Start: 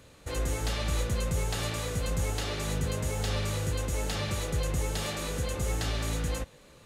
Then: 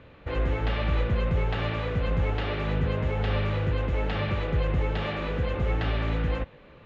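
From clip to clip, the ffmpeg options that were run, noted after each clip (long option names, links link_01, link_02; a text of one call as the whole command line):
ffmpeg -i in.wav -af "lowpass=frequency=2900:width=0.5412,lowpass=frequency=2900:width=1.3066,volume=4.5dB" out.wav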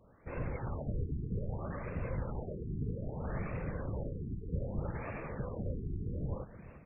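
ffmpeg -i in.wav -filter_complex "[0:a]asplit=6[link_01][link_02][link_03][link_04][link_05][link_06];[link_02]adelay=343,afreqshift=30,volume=-15dB[link_07];[link_03]adelay=686,afreqshift=60,volume=-21dB[link_08];[link_04]adelay=1029,afreqshift=90,volume=-27dB[link_09];[link_05]adelay=1372,afreqshift=120,volume=-33.1dB[link_10];[link_06]adelay=1715,afreqshift=150,volume=-39.1dB[link_11];[link_01][link_07][link_08][link_09][link_10][link_11]amix=inputs=6:normalize=0,afftfilt=real='hypot(re,im)*cos(2*PI*random(0))':imag='hypot(re,im)*sin(2*PI*random(1))':win_size=512:overlap=0.75,afftfilt=real='re*lt(b*sr/1024,420*pow(2800/420,0.5+0.5*sin(2*PI*0.63*pts/sr)))':imag='im*lt(b*sr/1024,420*pow(2800/420,0.5+0.5*sin(2*PI*0.63*pts/sr)))':win_size=1024:overlap=0.75,volume=-5dB" out.wav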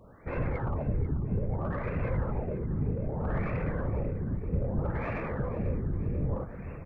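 ffmpeg -i in.wav -filter_complex "[0:a]asplit=2[link_01][link_02];[link_02]asoftclip=type=tanh:threshold=-40dB,volume=-4dB[link_03];[link_01][link_03]amix=inputs=2:normalize=0,aecho=1:1:490|980|1470|1960|2450:0.188|0.0961|0.049|0.025|0.0127,volume=4.5dB" out.wav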